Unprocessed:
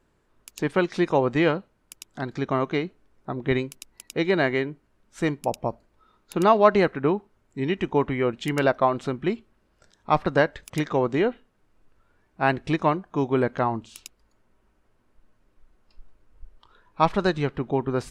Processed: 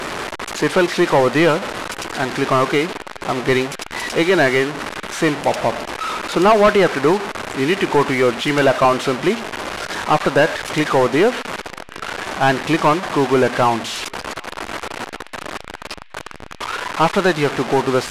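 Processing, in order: one-bit delta coder 64 kbps, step -30.5 dBFS; overdrive pedal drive 23 dB, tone 2.4 kHz, clips at -3.5 dBFS; band-passed feedback delay 768 ms, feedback 79%, band-pass 2.6 kHz, level -23 dB

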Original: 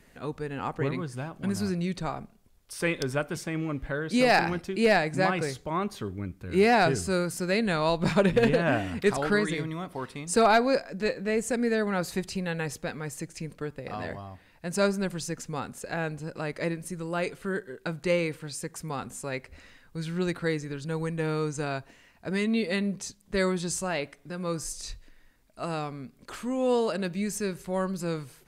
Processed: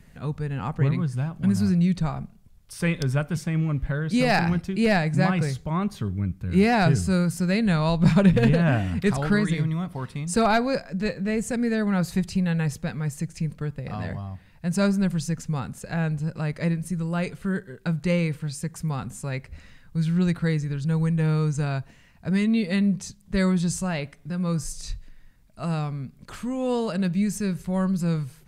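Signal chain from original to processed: resonant low shelf 230 Hz +9 dB, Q 1.5

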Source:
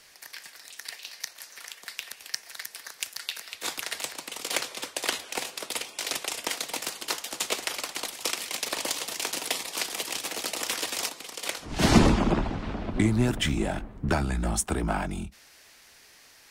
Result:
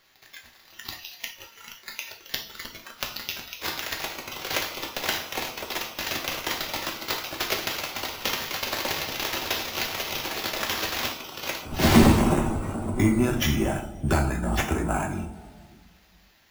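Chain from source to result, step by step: sample-and-hold 5×; two-slope reverb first 0.53 s, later 3.4 s, from -18 dB, DRR 1 dB; spectral noise reduction 9 dB

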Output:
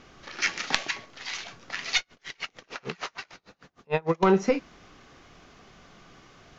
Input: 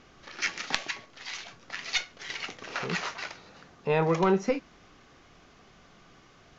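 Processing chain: 1.98–4.23 s: logarithmic tremolo 6.6 Hz, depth 33 dB; trim +3.5 dB

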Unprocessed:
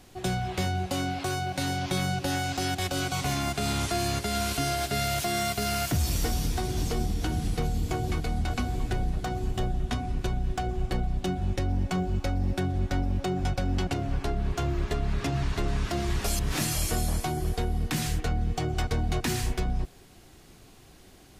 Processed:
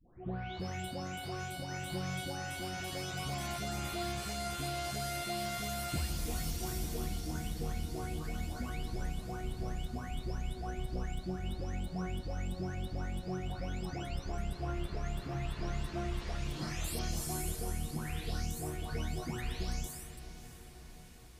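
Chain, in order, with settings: delay that grows with frequency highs late, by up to 597 ms; echo that smears into a reverb 616 ms, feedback 65%, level -13 dB; trim -8 dB

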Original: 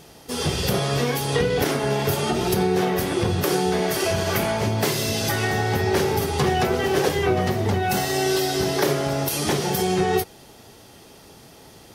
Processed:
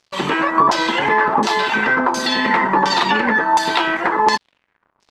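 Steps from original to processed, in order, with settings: crossover distortion -40.5 dBFS; speed mistake 33 rpm record played at 78 rpm; LFO low-pass saw down 1.4 Hz 970–5600 Hz; trim +4 dB

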